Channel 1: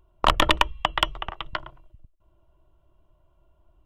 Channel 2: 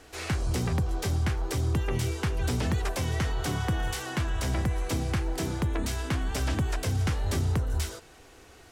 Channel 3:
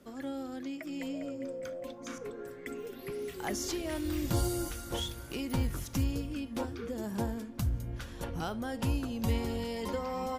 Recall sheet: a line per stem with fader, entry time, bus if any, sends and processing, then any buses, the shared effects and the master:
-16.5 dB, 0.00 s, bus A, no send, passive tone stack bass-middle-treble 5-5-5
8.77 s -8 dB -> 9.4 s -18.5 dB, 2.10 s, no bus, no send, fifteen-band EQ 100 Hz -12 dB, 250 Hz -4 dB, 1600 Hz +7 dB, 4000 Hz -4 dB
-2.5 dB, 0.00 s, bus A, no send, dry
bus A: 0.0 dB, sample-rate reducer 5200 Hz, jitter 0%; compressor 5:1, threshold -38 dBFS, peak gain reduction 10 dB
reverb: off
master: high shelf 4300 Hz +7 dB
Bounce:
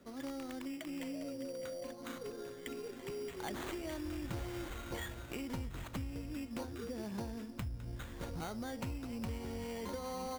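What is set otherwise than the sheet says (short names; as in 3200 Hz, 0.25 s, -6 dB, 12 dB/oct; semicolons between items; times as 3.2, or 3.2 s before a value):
stem 1 -16.5 dB -> -22.5 dB; stem 2: muted; master: missing high shelf 4300 Hz +7 dB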